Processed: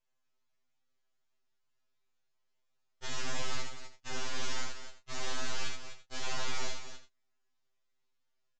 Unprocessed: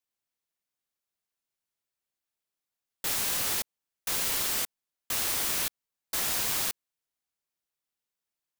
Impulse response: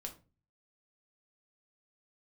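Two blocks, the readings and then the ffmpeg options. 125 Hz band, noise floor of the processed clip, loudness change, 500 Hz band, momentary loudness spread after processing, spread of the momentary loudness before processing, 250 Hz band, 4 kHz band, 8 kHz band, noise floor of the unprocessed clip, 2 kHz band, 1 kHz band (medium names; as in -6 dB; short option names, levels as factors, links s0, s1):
+1.0 dB, -76 dBFS, -12.0 dB, -2.0 dB, 10 LU, 9 LU, -3.5 dB, -7.0 dB, -12.5 dB, under -85 dBFS, -4.5 dB, -3.0 dB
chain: -filter_complex "[0:a]highshelf=f=3400:g=-8.5,alimiter=level_in=3.16:limit=0.0631:level=0:latency=1:release=128,volume=0.316,aeval=exprs='max(val(0),0)':c=same,asplit=2[s0][s1];[s1]adelay=28,volume=0.355[s2];[s0][s2]amix=inputs=2:normalize=0,aecho=1:1:72|250|335:0.631|0.355|0.106,aresample=16000,aresample=44100,afftfilt=real='re*2.45*eq(mod(b,6),0)':imag='im*2.45*eq(mod(b,6),0)':win_size=2048:overlap=0.75,volume=3.76"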